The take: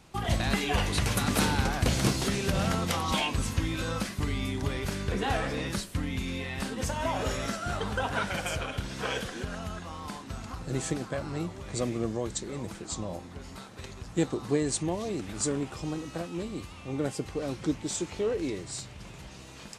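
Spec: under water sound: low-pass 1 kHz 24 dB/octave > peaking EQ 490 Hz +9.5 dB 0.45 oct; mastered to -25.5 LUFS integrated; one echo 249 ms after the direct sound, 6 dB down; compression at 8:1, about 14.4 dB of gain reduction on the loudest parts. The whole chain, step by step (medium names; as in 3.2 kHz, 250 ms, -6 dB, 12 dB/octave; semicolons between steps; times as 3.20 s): compression 8:1, threshold -37 dBFS; low-pass 1 kHz 24 dB/octave; peaking EQ 490 Hz +9.5 dB 0.45 oct; delay 249 ms -6 dB; trim +14 dB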